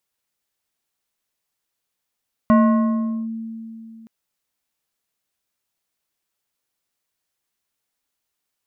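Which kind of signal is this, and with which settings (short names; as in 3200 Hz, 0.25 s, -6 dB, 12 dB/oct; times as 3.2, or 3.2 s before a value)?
FM tone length 1.57 s, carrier 225 Hz, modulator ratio 3.78, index 0.77, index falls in 0.78 s linear, decay 2.99 s, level -9 dB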